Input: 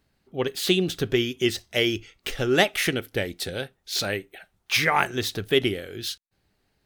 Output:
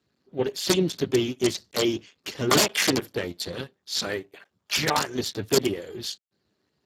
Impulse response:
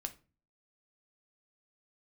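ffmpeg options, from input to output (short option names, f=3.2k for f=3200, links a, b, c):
-filter_complex "[0:a]asettb=1/sr,asplit=3[a][b][c];[a]atrim=end=2.514[d];[b]atrim=start=2.51:end=3.12,asetpts=PTS-STARTPTS,afade=t=in:d=0.004:c=qsin,afade=t=out:st=0.606:d=0.004:c=qsin,acontrast=28[e];[c]atrim=start=3.116[f];[d][e]acrossfade=d=0.004:c1=hsin:c2=qsin[g];[g][f]acrossfade=d=0.004:c1=qsin:c2=hsin,aeval=exprs='(mod(3.55*val(0)+1,2)-1)/3.55':c=same,volume=1dB" -ar 32000 -c:a libspeex -b:a 8k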